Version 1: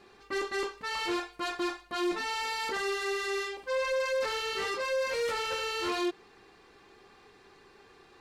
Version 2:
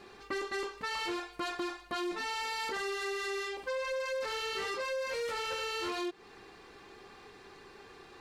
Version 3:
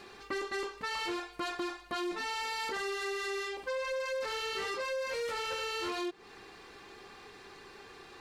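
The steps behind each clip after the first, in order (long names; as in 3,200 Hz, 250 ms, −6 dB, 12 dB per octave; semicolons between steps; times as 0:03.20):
downward compressor, threshold −38 dBFS, peak gain reduction 10.5 dB; level +4 dB
one half of a high-frequency compander encoder only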